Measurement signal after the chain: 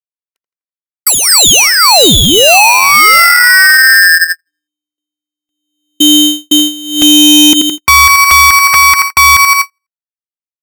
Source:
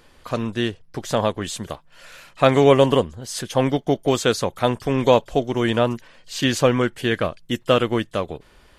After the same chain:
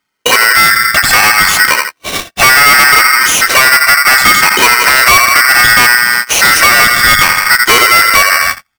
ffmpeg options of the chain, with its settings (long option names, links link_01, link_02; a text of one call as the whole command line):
ffmpeg -i in.wav -filter_complex "[0:a]afftfilt=real='re*pow(10,16/40*sin(2*PI*(1.1*log(max(b,1)*sr/1024/100)/log(2)-(-0.67)*(pts-256)/sr)))':imag='im*pow(10,16/40*sin(2*PI*(1.1*log(max(b,1)*sr/1024/100)/log(2)-(-0.67)*(pts-256)/sr)))':win_size=1024:overlap=0.75,acrossover=split=430[link_01][link_02];[link_02]asoftclip=type=hard:threshold=-11dB[link_03];[link_01][link_03]amix=inputs=2:normalize=0,asplit=2[link_04][link_05];[link_05]adelay=83,lowpass=frequency=1800:poles=1,volume=-13.5dB,asplit=2[link_06][link_07];[link_07]adelay=83,lowpass=frequency=1800:poles=1,volume=0.55,asplit=2[link_08][link_09];[link_09]adelay=83,lowpass=frequency=1800:poles=1,volume=0.55,asplit=2[link_10][link_11];[link_11]adelay=83,lowpass=frequency=1800:poles=1,volume=0.55,asplit=2[link_12][link_13];[link_13]adelay=83,lowpass=frequency=1800:poles=1,volume=0.55,asplit=2[link_14][link_15];[link_15]adelay=83,lowpass=frequency=1800:poles=1,volume=0.55[link_16];[link_04][link_06][link_08][link_10][link_12][link_14][link_16]amix=inputs=7:normalize=0,agate=range=-49dB:threshold=-39dB:ratio=16:detection=peak,acompressor=threshold=-29dB:ratio=2,highpass=frequency=90:width=0.5412,highpass=frequency=90:width=1.3066,highshelf=frequency=2700:gain=-9.5,asoftclip=type=tanh:threshold=-28.5dB,aresample=32000,aresample=44100,lowshelf=frequency=120:gain=4,alimiter=level_in=34dB:limit=-1dB:release=50:level=0:latency=1,aeval=exprs='val(0)*sgn(sin(2*PI*1700*n/s))':channel_layout=same,volume=-1dB" out.wav